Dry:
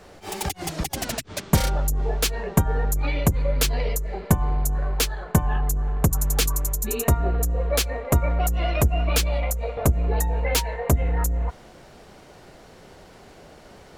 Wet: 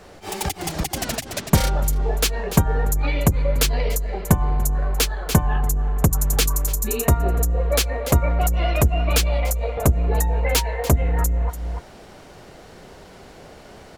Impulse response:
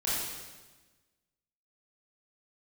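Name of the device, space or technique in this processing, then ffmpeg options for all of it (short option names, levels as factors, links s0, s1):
ducked delay: -filter_complex "[0:a]asplit=3[s0][s1][s2];[s1]adelay=290,volume=0.562[s3];[s2]apad=whole_len=629210[s4];[s3][s4]sidechaincompress=threshold=0.0126:ratio=6:attack=46:release=152[s5];[s0][s5]amix=inputs=2:normalize=0,volume=1.33"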